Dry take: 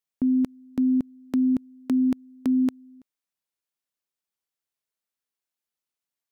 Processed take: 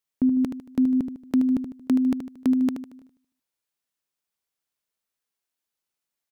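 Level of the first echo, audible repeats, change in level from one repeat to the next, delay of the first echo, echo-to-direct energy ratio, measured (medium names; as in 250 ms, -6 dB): -8.5 dB, 4, -7.5 dB, 76 ms, -7.5 dB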